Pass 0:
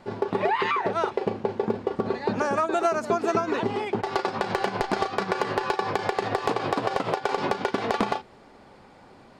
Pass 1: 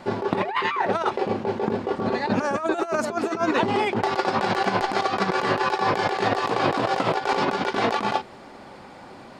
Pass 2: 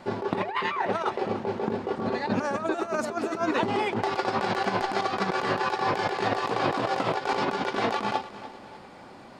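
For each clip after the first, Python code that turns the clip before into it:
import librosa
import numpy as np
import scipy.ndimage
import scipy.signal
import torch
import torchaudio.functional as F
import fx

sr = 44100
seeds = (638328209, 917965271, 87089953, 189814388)

y1 = fx.low_shelf(x, sr, hz=94.0, db=-8.5)
y1 = fx.notch(y1, sr, hz=440.0, q=12.0)
y1 = fx.over_compress(y1, sr, threshold_db=-28.0, ratio=-0.5)
y1 = y1 * librosa.db_to_amplitude(6.0)
y2 = fx.echo_feedback(y1, sr, ms=297, feedback_pct=47, wet_db=-15.0)
y2 = y2 * librosa.db_to_amplitude(-4.0)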